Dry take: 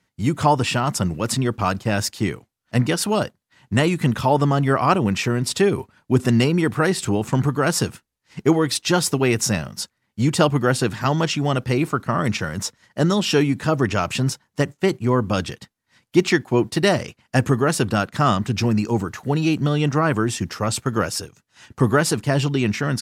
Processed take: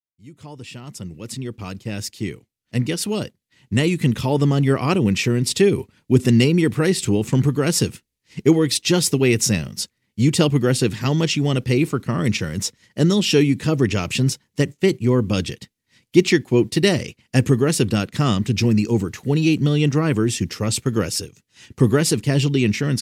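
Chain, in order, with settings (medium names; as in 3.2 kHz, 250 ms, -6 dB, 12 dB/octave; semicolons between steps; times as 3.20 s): fade-in on the opening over 4.72 s; high-order bell 990 Hz -10 dB; trim +2.5 dB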